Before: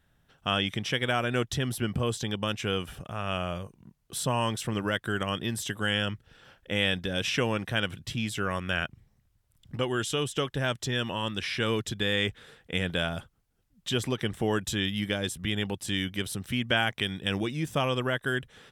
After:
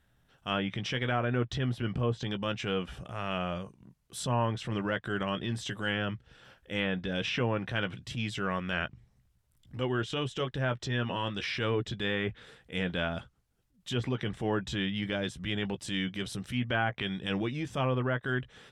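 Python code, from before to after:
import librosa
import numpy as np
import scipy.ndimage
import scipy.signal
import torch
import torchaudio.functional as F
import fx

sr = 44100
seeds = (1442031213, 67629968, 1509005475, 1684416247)

y = fx.chorus_voices(x, sr, voices=6, hz=0.75, base_ms=16, depth_ms=1.1, mix_pct=20)
y = fx.transient(y, sr, attack_db=-7, sustain_db=0)
y = fx.env_lowpass_down(y, sr, base_hz=1600.0, full_db=-25.0)
y = y * librosa.db_to_amplitude(1.0)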